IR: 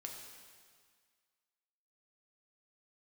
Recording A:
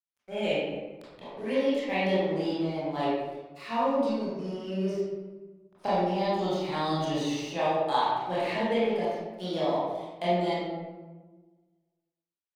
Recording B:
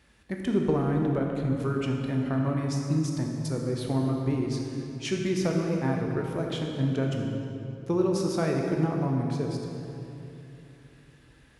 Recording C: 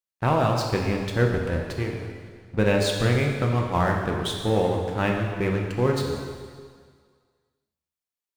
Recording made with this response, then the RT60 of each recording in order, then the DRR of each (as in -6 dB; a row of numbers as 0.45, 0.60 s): C; 1.3, 2.9, 1.8 s; -10.5, 0.5, 0.5 dB